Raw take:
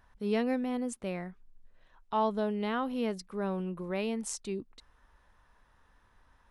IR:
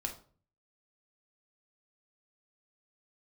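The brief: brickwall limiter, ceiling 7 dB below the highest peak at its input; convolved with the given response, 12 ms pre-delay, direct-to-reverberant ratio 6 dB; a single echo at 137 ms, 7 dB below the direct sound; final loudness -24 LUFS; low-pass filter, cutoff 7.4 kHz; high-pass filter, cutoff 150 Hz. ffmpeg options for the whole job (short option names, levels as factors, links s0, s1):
-filter_complex "[0:a]highpass=150,lowpass=7400,alimiter=level_in=1.12:limit=0.0631:level=0:latency=1,volume=0.891,aecho=1:1:137:0.447,asplit=2[s0][s1];[1:a]atrim=start_sample=2205,adelay=12[s2];[s1][s2]afir=irnorm=-1:irlink=0,volume=0.473[s3];[s0][s3]amix=inputs=2:normalize=0,volume=3.16"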